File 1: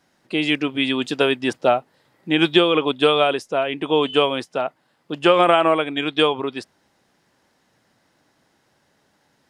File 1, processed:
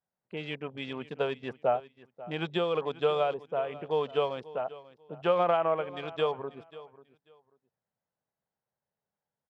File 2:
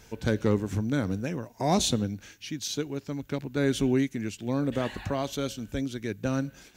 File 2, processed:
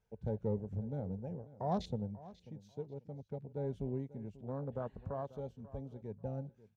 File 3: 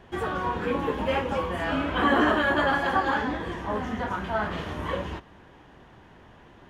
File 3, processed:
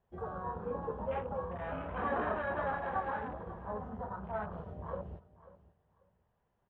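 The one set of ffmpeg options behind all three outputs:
-filter_complex "[0:a]afwtdn=0.0282,firequalizer=gain_entry='entry(190,0);entry(300,-13);entry(440,0);entry(740,0);entry(1800,-7);entry(4900,-12);entry(7900,-14)':delay=0.05:min_phase=1,asplit=2[a][b];[b]aecho=0:1:540|1080:0.126|0.0264[c];[a][c]amix=inputs=2:normalize=0,volume=-9dB"

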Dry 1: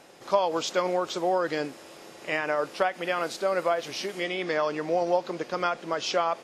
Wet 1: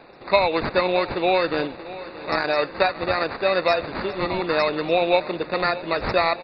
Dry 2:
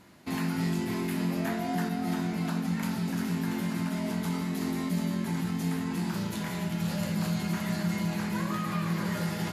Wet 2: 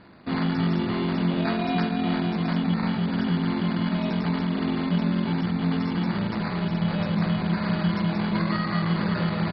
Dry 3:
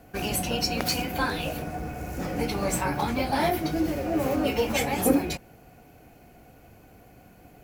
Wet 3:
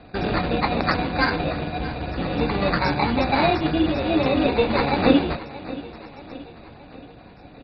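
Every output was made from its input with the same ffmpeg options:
-filter_complex "[0:a]acrusher=samples=14:mix=1:aa=0.000001,asplit=2[a][b];[b]aecho=0:1:626|1252|1878|2504|3130:0.15|0.0793|0.042|0.0223|0.0118[c];[a][c]amix=inputs=2:normalize=0,volume=5.5dB" -ar 44100 -c:a mp2 -b:a 32k

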